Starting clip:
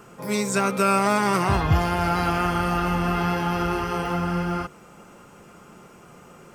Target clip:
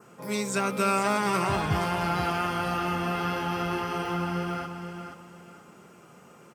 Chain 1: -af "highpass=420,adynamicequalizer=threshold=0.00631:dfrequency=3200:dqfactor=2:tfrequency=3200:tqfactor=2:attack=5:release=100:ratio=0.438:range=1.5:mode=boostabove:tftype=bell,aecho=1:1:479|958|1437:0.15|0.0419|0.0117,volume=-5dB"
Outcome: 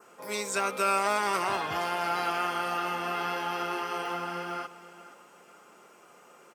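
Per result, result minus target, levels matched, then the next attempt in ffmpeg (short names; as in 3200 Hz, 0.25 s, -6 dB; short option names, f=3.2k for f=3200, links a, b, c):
125 Hz band -13.5 dB; echo-to-direct -8.5 dB
-af "highpass=110,adynamicequalizer=threshold=0.00631:dfrequency=3200:dqfactor=2:tfrequency=3200:tqfactor=2:attack=5:release=100:ratio=0.438:range=1.5:mode=boostabove:tftype=bell,aecho=1:1:479|958|1437:0.15|0.0419|0.0117,volume=-5dB"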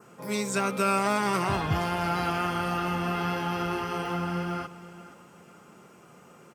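echo-to-direct -8.5 dB
-af "highpass=110,adynamicequalizer=threshold=0.00631:dfrequency=3200:dqfactor=2:tfrequency=3200:tqfactor=2:attack=5:release=100:ratio=0.438:range=1.5:mode=boostabove:tftype=bell,aecho=1:1:479|958|1437:0.398|0.111|0.0312,volume=-5dB"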